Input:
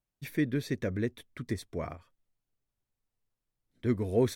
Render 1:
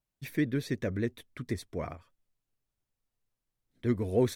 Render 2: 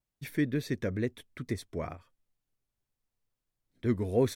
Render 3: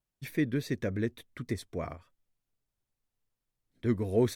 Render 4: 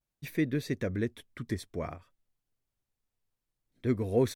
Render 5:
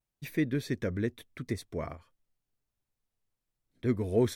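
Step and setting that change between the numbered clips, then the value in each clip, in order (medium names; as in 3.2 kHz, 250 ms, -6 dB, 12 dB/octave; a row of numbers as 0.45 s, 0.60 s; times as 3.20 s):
vibrato, rate: 12 Hz, 2.2 Hz, 3.5 Hz, 0.57 Hz, 0.87 Hz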